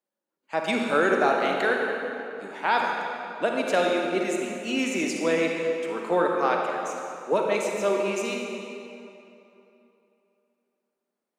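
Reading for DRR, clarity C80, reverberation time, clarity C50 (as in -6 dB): 0.0 dB, 2.0 dB, 3.0 s, 1.0 dB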